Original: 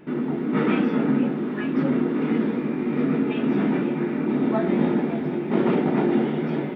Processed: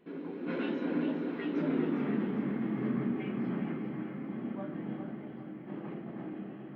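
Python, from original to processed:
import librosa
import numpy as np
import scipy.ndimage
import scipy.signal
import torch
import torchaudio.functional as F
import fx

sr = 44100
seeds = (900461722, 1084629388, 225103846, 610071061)

p1 = fx.doppler_pass(x, sr, speed_mps=42, closest_m=11.0, pass_at_s=1.87)
p2 = fx.rider(p1, sr, range_db=5, speed_s=0.5)
p3 = p2 + fx.echo_split(p2, sr, split_hz=340.0, low_ms=211, high_ms=403, feedback_pct=52, wet_db=-8.5, dry=0)
y = p3 * librosa.db_to_amplitude(-3.0)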